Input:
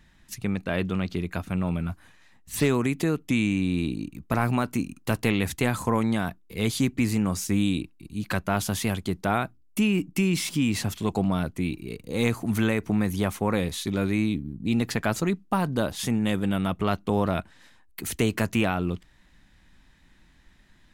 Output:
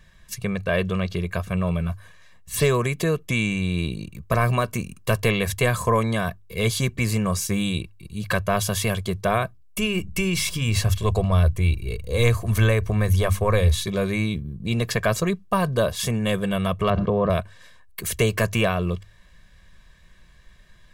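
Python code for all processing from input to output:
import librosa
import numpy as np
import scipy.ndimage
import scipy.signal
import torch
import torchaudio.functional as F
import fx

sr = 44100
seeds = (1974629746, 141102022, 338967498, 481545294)

y = fx.chain(x, sr, fx.low_shelf_res(hz=110.0, db=12.5, q=1.5),
    fx.hum_notches(base_hz=50, count=5), at=(9.78, 13.85))
y = fx.chain(y, sr, fx.highpass(hz=56.0, slope=12),
    fx.spacing_loss(db_at_10k=39),
    fx.env_flatten(amount_pct=100), at=(16.9, 17.3))
y = fx.hum_notches(y, sr, base_hz=50, count=2)
y = y + 0.82 * np.pad(y, (int(1.8 * sr / 1000.0), 0))[:len(y)]
y = F.gain(torch.from_numpy(y), 2.5).numpy()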